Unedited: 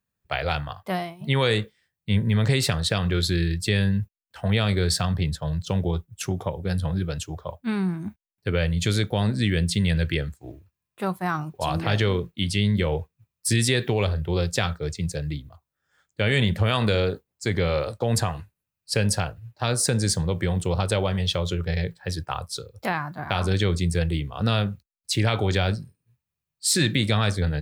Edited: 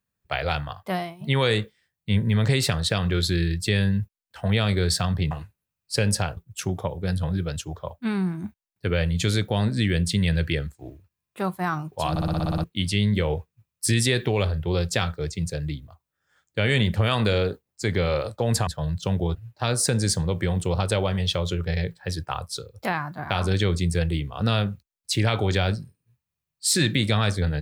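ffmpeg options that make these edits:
-filter_complex "[0:a]asplit=14[s0][s1][s2][s3][s4][s5][s6][s7][s8][s9][s10][s11][s12][s13];[s0]atrim=end=5.312[s14];[s1]atrim=start=18.288:end=19.352[s15];[s2]atrim=start=5.988:end=11.782[s16];[s3]atrim=start=11.718:end=11.782[s17];[s4]atrim=start=11.718:end=11.782[s18];[s5]atrim=start=11.718:end=11.782[s19];[s6]atrim=start=11.718:end=11.782[s20];[s7]atrim=start=11.718:end=11.782[s21];[s8]atrim=start=11.718:end=11.782[s22];[s9]atrim=start=11.718:end=11.782[s23];[s10]atrim=start=11.718:end=11.782[s24];[s11]atrim=start=12.258:end=18.292[s25];[s12]atrim=start=5.308:end=5.992[s26];[s13]atrim=start=19.348[s27];[s14][s15]acrossfade=d=0.004:c1=hsin:c2=hsin[s28];[s28][s16]acrossfade=d=0.004:c1=hsin:c2=hsin[s29];[s29][s17]acrossfade=d=0.004:c1=hsin:c2=hsin[s30];[s30][s18]acrossfade=d=0.004:c1=hsin:c2=hsin[s31];[s31][s19]acrossfade=d=0.004:c1=hsin:c2=hsin[s32];[s32][s20]acrossfade=d=0.004:c1=hsin:c2=hsin[s33];[s33][s21]acrossfade=d=0.004:c1=hsin:c2=hsin[s34];[s34][s22]acrossfade=d=0.004:c1=hsin:c2=hsin[s35];[s35][s23]acrossfade=d=0.004:c1=hsin:c2=hsin[s36];[s36][s24]acrossfade=d=0.004:c1=hsin:c2=hsin[s37];[s37][s25]acrossfade=d=0.004:c1=hsin:c2=hsin[s38];[s38][s26]acrossfade=d=0.004:c1=hsin:c2=hsin[s39];[s39][s27]acrossfade=d=0.004:c1=hsin:c2=hsin"

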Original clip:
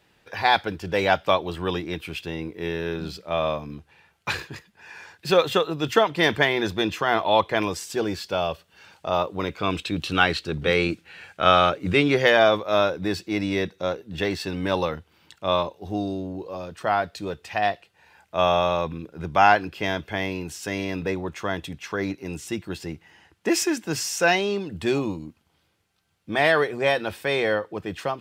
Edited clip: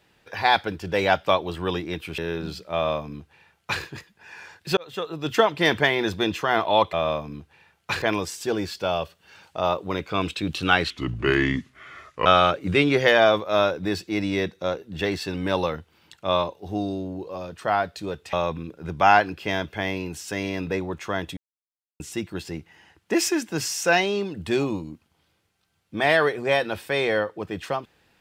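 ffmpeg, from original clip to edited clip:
-filter_complex "[0:a]asplit=10[s0][s1][s2][s3][s4][s5][s6][s7][s8][s9];[s0]atrim=end=2.182[s10];[s1]atrim=start=2.758:end=5.35,asetpts=PTS-STARTPTS,afade=t=out:st=2.588:d=0.004:c=hsin[s11];[s2]atrim=start=5.35:end=7.512,asetpts=PTS-STARTPTS,afade=t=in:d=0.63[s12];[s3]atrim=start=3.308:end=4.402[s13];[s4]atrim=start=7.508:end=10.394[s14];[s5]atrim=start=10.39:end=11.45,asetpts=PTS-STARTPTS,asetrate=34398,aresample=44100[s15];[s6]atrim=start=11.446:end=17.522[s16];[s7]atrim=start=18.678:end=21.72,asetpts=PTS-STARTPTS,afade=t=out:st=3.038:d=0.004:c=hsin[s17];[s8]atrim=start=21.72:end=22.35,asetpts=PTS-STARTPTS,volume=0[s18];[s9]atrim=start=22.35,asetpts=PTS-STARTPTS,afade=t=in:d=0.004:c=hsin[s19];[s11][s12]concat=n=2:v=0:a=1[s20];[s10][s20]acrossfade=d=0.004:c1=hsin:c2=hsin[s21];[s21][s13]acrossfade=d=0.004:c1=hsin:c2=hsin[s22];[s22][s14]acrossfade=d=0.004:c1=hsin:c2=hsin[s23];[s23][s15]acrossfade=d=0.004:c1=hsin:c2=hsin[s24];[s24][s16]acrossfade=d=0.004:c1=hsin:c2=hsin[s25];[s17][s18][s19]concat=n=3:v=0:a=1[s26];[s25][s26]acrossfade=d=0.004:c1=hsin:c2=hsin"

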